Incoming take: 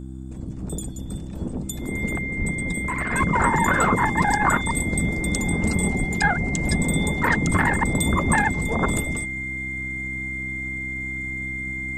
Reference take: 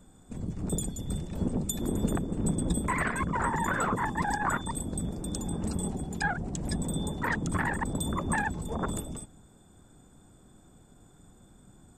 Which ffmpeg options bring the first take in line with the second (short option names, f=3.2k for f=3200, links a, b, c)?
-filter_complex "[0:a]bandreject=f=65:t=h:w=4,bandreject=f=130:t=h:w=4,bandreject=f=195:t=h:w=4,bandreject=f=260:t=h:w=4,bandreject=f=325:t=h:w=4,bandreject=f=2.1k:w=30,asplit=3[a][b][c];[a]afade=t=out:st=2.38:d=0.02[d];[b]highpass=f=140:w=0.5412,highpass=f=140:w=1.3066,afade=t=in:st=2.38:d=0.02,afade=t=out:st=2.5:d=0.02[e];[c]afade=t=in:st=2.5:d=0.02[f];[d][e][f]amix=inputs=3:normalize=0,asplit=3[g][h][i];[g]afade=t=out:st=5.98:d=0.02[j];[h]highpass=f=140:w=0.5412,highpass=f=140:w=1.3066,afade=t=in:st=5.98:d=0.02,afade=t=out:st=6.1:d=0.02[k];[i]afade=t=in:st=6.1:d=0.02[l];[j][k][l]amix=inputs=3:normalize=0,asplit=3[m][n][o];[m]afade=t=out:st=8.1:d=0.02[p];[n]highpass=f=140:w=0.5412,highpass=f=140:w=1.3066,afade=t=in:st=8.1:d=0.02,afade=t=out:st=8.22:d=0.02[q];[o]afade=t=in:st=8.22:d=0.02[r];[p][q][r]amix=inputs=3:normalize=0,asetnsamples=n=441:p=0,asendcmd='3.11 volume volume -9dB',volume=0dB"